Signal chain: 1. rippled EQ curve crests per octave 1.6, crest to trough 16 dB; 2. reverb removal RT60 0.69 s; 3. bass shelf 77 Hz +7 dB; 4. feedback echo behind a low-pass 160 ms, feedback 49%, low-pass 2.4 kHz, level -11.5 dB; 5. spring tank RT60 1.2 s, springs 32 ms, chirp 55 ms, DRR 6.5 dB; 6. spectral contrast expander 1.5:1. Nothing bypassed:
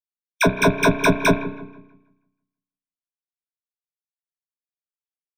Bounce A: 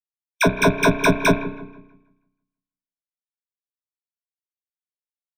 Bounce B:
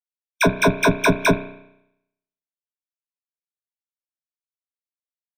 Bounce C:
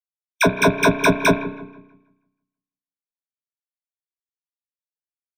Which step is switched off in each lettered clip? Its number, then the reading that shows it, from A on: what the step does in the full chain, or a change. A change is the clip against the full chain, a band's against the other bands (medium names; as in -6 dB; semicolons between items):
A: 2, momentary loudness spread change -6 LU; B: 4, momentary loudness spread change -8 LU; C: 3, 125 Hz band -2.0 dB